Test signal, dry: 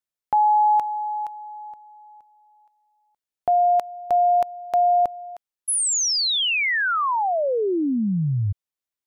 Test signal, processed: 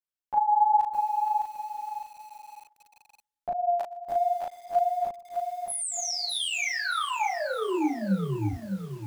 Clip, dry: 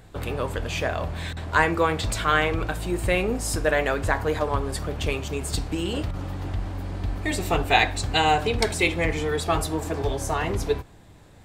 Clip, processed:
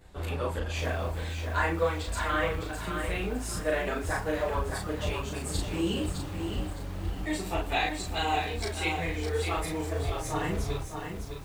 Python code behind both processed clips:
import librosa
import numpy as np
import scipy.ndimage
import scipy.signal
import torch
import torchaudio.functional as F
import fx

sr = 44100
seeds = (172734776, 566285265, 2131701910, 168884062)

p1 = fx.chorus_voices(x, sr, voices=6, hz=0.73, base_ms=13, depth_ms=3.4, mix_pct=65)
p2 = fx.doubler(p1, sr, ms=36.0, db=-2.5)
p3 = fx.rider(p2, sr, range_db=4, speed_s=2.0)
p4 = p3 + fx.echo_feedback(p3, sr, ms=119, feedback_pct=54, wet_db=-23, dry=0)
p5 = fx.echo_crushed(p4, sr, ms=609, feedback_pct=35, bits=7, wet_db=-6.0)
y = p5 * 10.0 ** (-7.0 / 20.0)